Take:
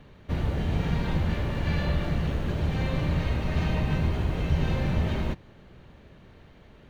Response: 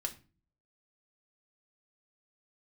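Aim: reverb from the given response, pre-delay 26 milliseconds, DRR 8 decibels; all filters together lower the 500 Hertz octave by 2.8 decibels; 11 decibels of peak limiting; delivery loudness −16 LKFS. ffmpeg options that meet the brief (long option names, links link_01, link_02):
-filter_complex "[0:a]equalizer=frequency=500:width_type=o:gain=-3.5,alimiter=limit=-24dB:level=0:latency=1,asplit=2[link_01][link_02];[1:a]atrim=start_sample=2205,adelay=26[link_03];[link_02][link_03]afir=irnorm=-1:irlink=0,volume=-8.5dB[link_04];[link_01][link_04]amix=inputs=2:normalize=0,volume=16.5dB"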